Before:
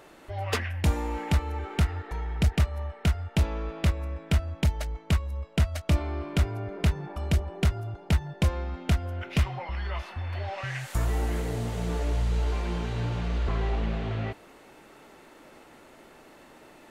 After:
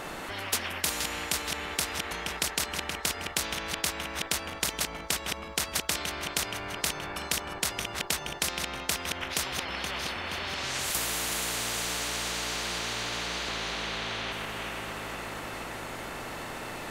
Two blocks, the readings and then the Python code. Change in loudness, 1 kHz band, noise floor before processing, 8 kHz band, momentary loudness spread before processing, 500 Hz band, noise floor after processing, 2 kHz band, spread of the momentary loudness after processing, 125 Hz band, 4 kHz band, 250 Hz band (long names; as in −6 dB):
−1.5 dB, +2.0 dB, −53 dBFS, +14.5 dB, 7 LU, −2.5 dB, −40 dBFS, +6.0 dB, 8 LU, −17.0 dB, +9.5 dB, −7.5 dB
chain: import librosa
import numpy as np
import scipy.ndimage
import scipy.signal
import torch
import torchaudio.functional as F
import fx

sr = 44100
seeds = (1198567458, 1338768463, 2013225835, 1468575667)

y = fx.reverse_delay_fb(x, sr, ms=237, feedback_pct=70, wet_db=-11.0)
y = fx.spectral_comp(y, sr, ratio=10.0)